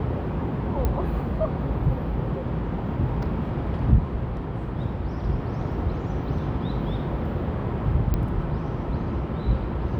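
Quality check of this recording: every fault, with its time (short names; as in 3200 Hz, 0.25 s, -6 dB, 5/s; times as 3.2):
0.85 pop -13 dBFS
8.14 pop -13 dBFS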